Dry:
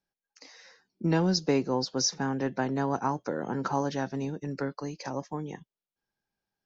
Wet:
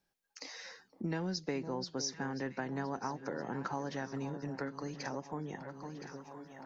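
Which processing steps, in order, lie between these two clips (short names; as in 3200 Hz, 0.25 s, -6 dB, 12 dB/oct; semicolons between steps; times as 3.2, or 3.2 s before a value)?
dynamic EQ 1900 Hz, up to +7 dB, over -52 dBFS, Q 2.5; on a send: echo with dull and thin repeats by turns 0.509 s, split 1100 Hz, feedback 63%, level -13 dB; on the sum: compressor 2.5:1, threshold -48 dBFS, peak gain reduction 18.5 dB; gain +5.5 dB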